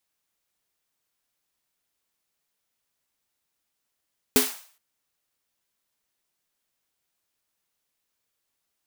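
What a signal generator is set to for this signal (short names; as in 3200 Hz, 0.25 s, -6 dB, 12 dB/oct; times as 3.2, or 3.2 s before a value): snare drum length 0.42 s, tones 260 Hz, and 420 Hz, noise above 640 Hz, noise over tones -1 dB, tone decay 0.21 s, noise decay 0.48 s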